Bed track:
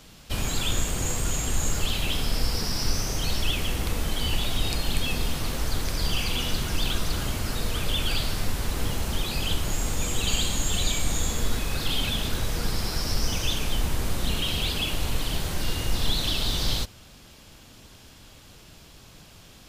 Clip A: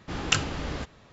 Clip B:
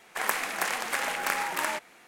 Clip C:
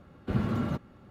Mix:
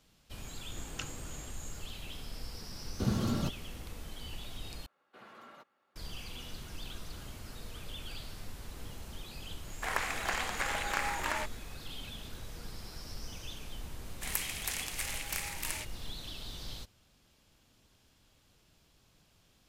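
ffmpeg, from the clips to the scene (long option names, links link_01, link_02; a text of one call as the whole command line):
ffmpeg -i bed.wav -i cue0.wav -i cue1.wav -i cue2.wav -filter_complex "[3:a]asplit=2[link_01][link_02];[2:a]asplit=2[link_03][link_04];[0:a]volume=-17.5dB[link_05];[link_01]highshelf=frequency=3400:width_type=q:width=1.5:gain=13[link_06];[link_02]highpass=750[link_07];[link_03]acrossover=split=6600[link_08][link_09];[link_09]acompressor=threshold=-42dB:ratio=4:attack=1:release=60[link_10];[link_08][link_10]amix=inputs=2:normalize=0[link_11];[link_04]aexciter=amount=3.8:drive=5.8:freq=2100[link_12];[link_05]asplit=2[link_13][link_14];[link_13]atrim=end=4.864[link_15];[link_07]atrim=end=1.1,asetpts=PTS-STARTPTS,volume=-12dB[link_16];[link_14]atrim=start=5.956[link_17];[1:a]atrim=end=1.12,asetpts=PTS-STARTPTS,volume=-18dB,afade=type=in:duration=0.004:curve=hsin,afade=type=out:start_time=1.116:duration=0.004:curve=hsin,adelay=670[link_18];[link_06]atrim=end=1.1,asetpts=PTS-STARTPTS,volume=-2.5dB,afade=type=in:duration=0.004:curve=hsin,afade=type=out:start_time=1.096:duration=0.004:curve=hsin,adelay=2720[link_19];[link_11]atrim=end=2.07,asetpts=PTS-STARTPTS,volume=-4.5dB,afade=type=in:duration=0.004:curve=hsin,afade=type=out:start_time=2.066:duration=0.004:curve=hsin,adelay=9670[link_20];[link_12]atrim=end=2.07,asetpts=PTS-STARTPTS,volume=-17dB,afade=type=in:duration=0.004:curve=hsin,afade=type=out:start_time=2.066:duration=0.004:curve=hsin,adelay=14060[link_21];[link_15][link_16]acrossfade=duration=0.004:curve1=hsin:curve2=hsin[link_22];[link_22][link_17]acrossfade=duration=0.004:curve1=hsin:curve2=hsin[link_23];[link_23][link_18][link_19][link_20][link_21]amix=inputs=5:normalize=0" out.wav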